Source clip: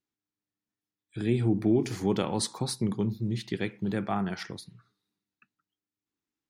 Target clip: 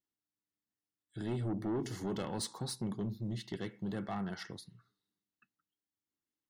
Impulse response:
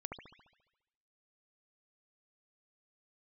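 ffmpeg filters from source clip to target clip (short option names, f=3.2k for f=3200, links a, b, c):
-af "asoftclip=type=tanh:threshold=-24.5dB,asuperstop=centerf=2400:order=20:qfactor=7.6,volume=-6dB"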